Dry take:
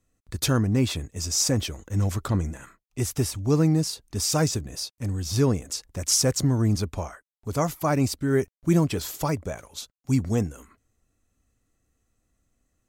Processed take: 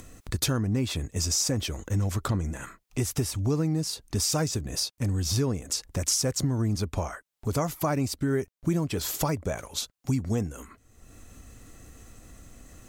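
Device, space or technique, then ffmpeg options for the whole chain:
upward and downward compression: -af "acompressor=mode=upward:threshold=-38dB:ratio=2.5,acompressor=threshold=-31dB:ratio=4,volume=6dB"

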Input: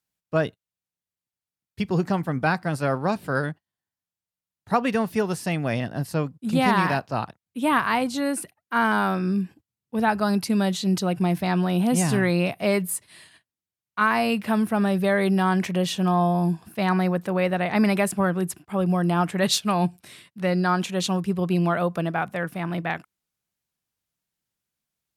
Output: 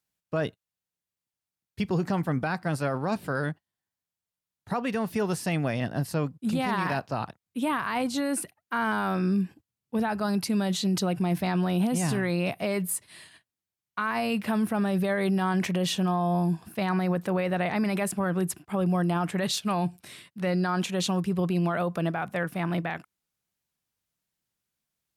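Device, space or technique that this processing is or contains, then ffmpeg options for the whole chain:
stacked limiters: -af "alimiter=limit=-13dB:level=0:latency=1:release=473,alimiter=limit=-19dB:level=0:latency=1:release=21"

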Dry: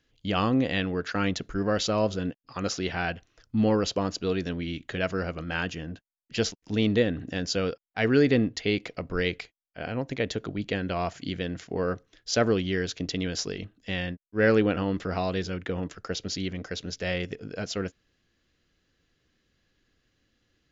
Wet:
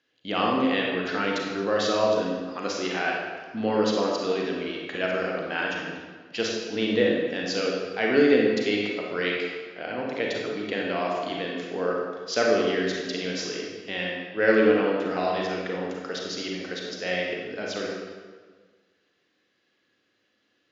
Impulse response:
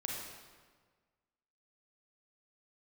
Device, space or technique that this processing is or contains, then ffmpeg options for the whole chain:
supermarket ceiling speaker: -filter_complex "[0:a]highpass=310,lowpass=5.2k[a];[1:a]atrim=start_sample=2205[b];[a][b]afir=irnorm=-1:irlink=0,volume=2.5dB"

